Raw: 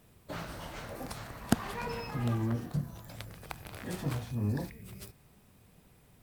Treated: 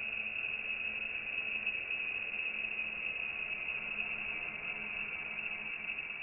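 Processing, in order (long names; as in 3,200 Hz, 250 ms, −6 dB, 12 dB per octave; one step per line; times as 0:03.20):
extreme stretch with random phases 27×, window 0.25 s, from 0:04.86
voice inversion scrambler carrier 2,700 Hz
level +8.5 dB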